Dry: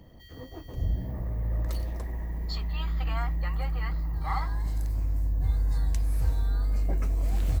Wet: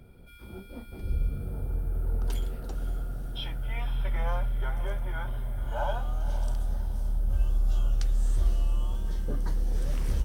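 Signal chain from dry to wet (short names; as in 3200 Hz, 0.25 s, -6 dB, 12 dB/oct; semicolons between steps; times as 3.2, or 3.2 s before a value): wide varispeed 0.742×; diffused feedback echo 0.538 s, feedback 44%, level -12 dB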